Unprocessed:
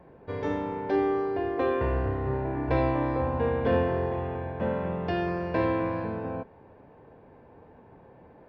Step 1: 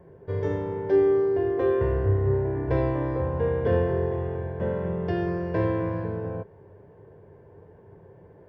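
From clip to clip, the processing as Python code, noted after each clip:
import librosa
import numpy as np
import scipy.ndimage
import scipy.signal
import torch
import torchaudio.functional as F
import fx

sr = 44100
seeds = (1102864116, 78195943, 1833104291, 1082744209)

y = fx.graphic_eq_31(x, sr, hz=(100, 160, 250, 400, 800, 1250, 2500, 4000), db=(11, 6, -10, 8, -7, -6, -9, -9))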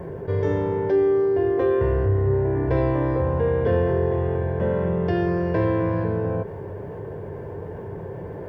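y = fx.env_flatten(x, sr, amount_pct=50)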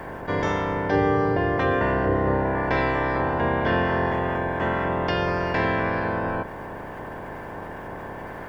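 y = fx.spec_clip(x, sr, under_db=23)
y = y * librosa.db_to_amplitude(-1.5)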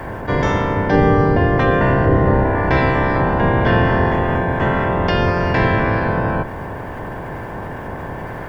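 y = fx.octave_divider(x, sr, octaves=1, level_db=2.0)
y = y * librosa.db_to_amplitude(6.0)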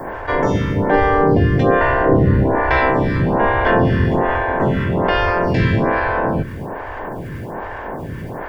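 y = fx.stagger_phaser(x, sr, hz=1.2)
y = y * librosa.db_to_amplitude(3.5)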